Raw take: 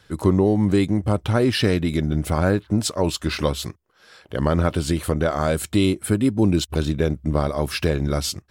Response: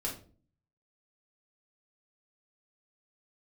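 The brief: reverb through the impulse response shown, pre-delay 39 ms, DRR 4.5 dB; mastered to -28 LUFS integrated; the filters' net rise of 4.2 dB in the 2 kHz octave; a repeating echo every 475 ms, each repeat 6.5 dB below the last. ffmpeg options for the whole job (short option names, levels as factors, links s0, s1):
-filter_complex "[0:a]equalizer=f=2000:t=o:g=5.5,aecho=1:1:475|950|1425|1900|2375|2850:0.473|0.222|0.105|0.0491|0.0231|0.0109,asplit=2[s0][s1];[1:a]atrim=start_sample=2205,adelay=39[s2];[s1][s2]afir=irnorm=-1:irlink=0,volume=0.447[s3];[s0][s3]amix=inputs=2:normalize=0,volume=0.316"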